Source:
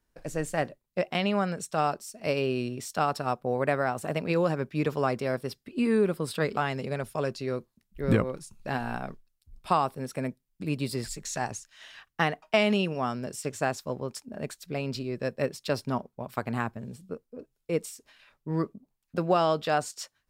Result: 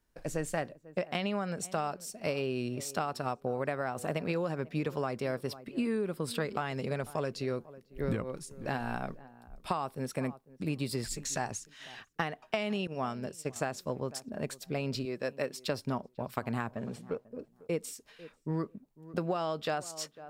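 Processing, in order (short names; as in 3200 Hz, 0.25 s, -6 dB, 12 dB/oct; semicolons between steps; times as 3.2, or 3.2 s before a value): 15.05–15.6 HPF 360 Hz 6 dB/oct; 16.73–17.25 overdrive pedal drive 17 dB, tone 1900 Hz, clips at -23 dBFS; tape echo 0.496 s, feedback 20%, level -20 dB, low-pass 1000 Hz; compressor 12:1, threshold -28 dBFS, peak gain reduction 11.5 dB; 12.87–13.56 expander -31 dBFS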